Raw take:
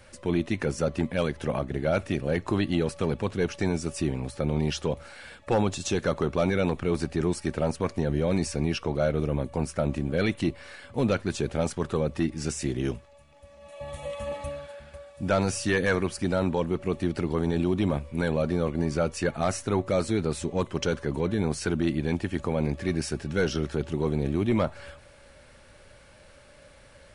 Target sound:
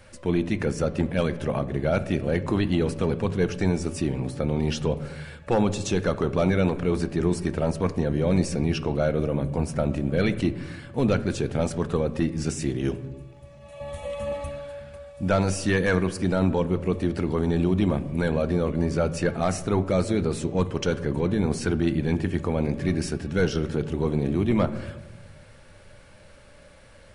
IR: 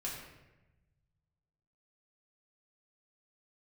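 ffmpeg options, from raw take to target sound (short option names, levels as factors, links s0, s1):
-filter_complex "[0:a]asplit=2[s0][s1];[s1]tiltshelf=f=660:g=4.5[s2];[1:a]atrim=start_sample=2205,lowpass=4400[s3];[s2][s3]afir=irnorm=-1:irlink=0,volume=0.355[s4];[s0][s4]amix=inputs=2:normalize=0"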